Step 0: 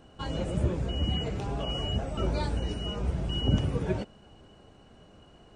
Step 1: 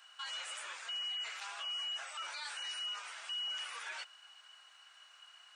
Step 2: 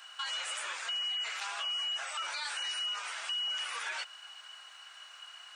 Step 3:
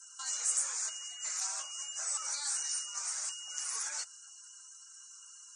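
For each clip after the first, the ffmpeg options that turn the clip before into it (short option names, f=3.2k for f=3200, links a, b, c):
-af "highpass=f=1.3k:w=0.5412,highpass=f=1.3k:w=1.3066,alimiter=level_in=15.5dB:limit=-24dB:level=0:latency=1:release=19,volume=-15.5dB,volume=5.5dB"
-af "acompressor=threshold=-44dB:ratio=2,volume=8.5dB"
-af "afreqshift=-40,highshelf=f=4.5k:t=q:w=3:g=13.5,afftdn=nr=23:nf=-50,volume=-6.5dB"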